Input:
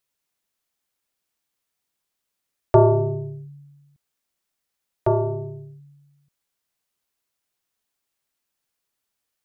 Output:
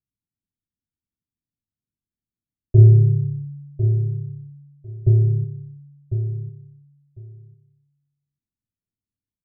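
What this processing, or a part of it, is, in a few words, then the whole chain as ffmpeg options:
the neighbour's flat through the wall: -filter_complex "[0:a]asettb=1/sr,asplit=3[a][b][c];[a]atrim=end=2.784[d];[b]atrim=start=2.78:end=5.44,asetpts=PTS-STARTPTS,afade=t=in:d=0.004:c=qsin,afade=t=out:st=2.656:d=0.004:c=qsin,lowshelf=f=210:g=6.5[e];[c]atrim=start=5.436[f];[d][e]acrossfade=d=0.004:c1=hsin:c2=qsin[g];[g][f]acrossfade=d=0.004:c1=qsin:c2=hsin,lowpass=f=270:w=0.5412,lowpass=f=270:w=1.3066,equalizer=f=99:t=o:w=0.58:g=6.5,aecho=1:1:1050|2100:0.355|0.0532,volume=2dB"

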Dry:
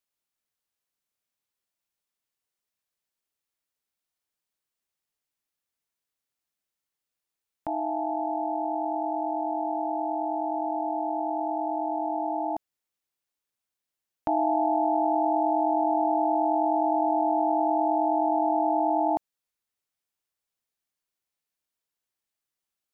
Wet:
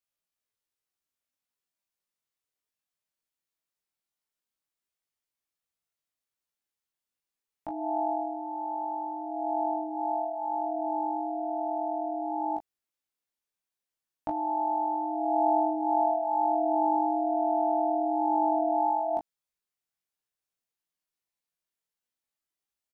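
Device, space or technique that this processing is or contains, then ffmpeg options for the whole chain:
double-tracked vocal: -filter_complex "[0:a]asplit=2[a][b];[b]adelay=17,volume=-6dB[c];[a][c]amix=inputs=2:normalize=0,flanger=delay=18.5:depth=5.2:speed=0.17,volume=-1.5dB"

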